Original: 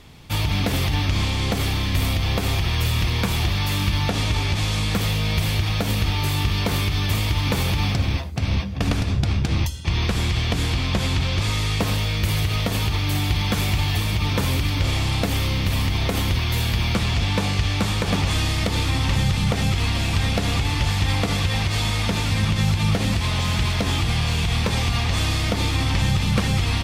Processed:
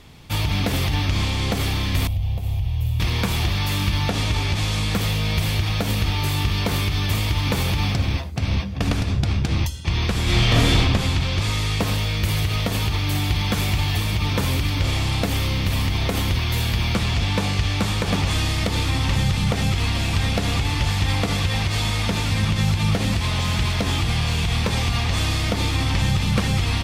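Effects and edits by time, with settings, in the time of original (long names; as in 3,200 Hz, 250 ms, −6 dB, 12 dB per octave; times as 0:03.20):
0:02.07–0:03.00: drawn EQ curve 120 Hz 0 dB, 200 Hz −13 dB, 340 Hz −18 dB, 760 Hz −10 dB, 1,400 Hz −26 dB, 2,900 Hz −14 dB, 4,800 Hz −20 dB, 8,900 Hz −16 dB, 13,000 Hz −10 dB
0:10.23–0:10.79: thrown reverb, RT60 1.1 s, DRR −6 dB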